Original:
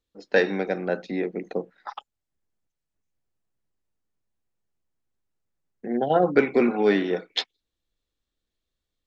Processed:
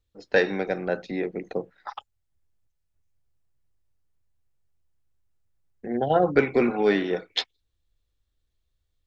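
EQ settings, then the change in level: resonant low shelf 140 Hz +9.5 dB, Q 1.5; 0.0 dB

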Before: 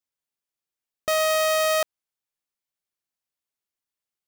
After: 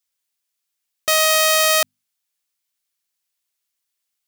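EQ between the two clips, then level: tilt shelf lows -6.5 dB, about 1.4 kHz; hum notches 50/100/150/200/250 Hz; +5.5 dB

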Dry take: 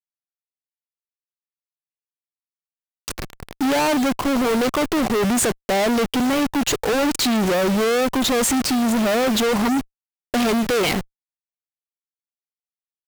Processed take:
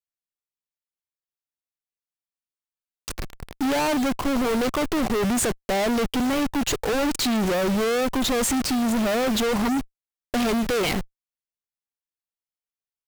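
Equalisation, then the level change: bass shelf 69 Hz +8.5 dB; -4.0 dB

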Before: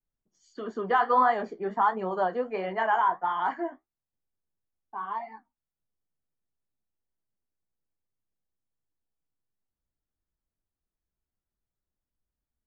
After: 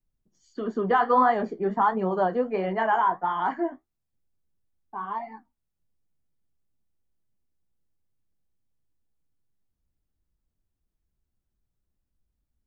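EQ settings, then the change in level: bass shelf 350 Hz +11.5 dB; 0.0 dB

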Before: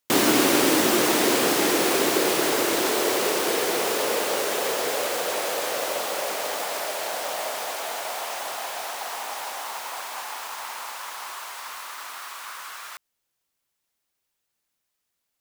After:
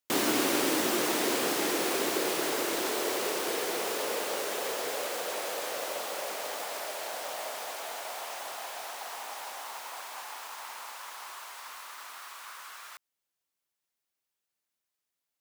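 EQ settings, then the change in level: bass shelf 110 Hz -8 dB; -7.5 dB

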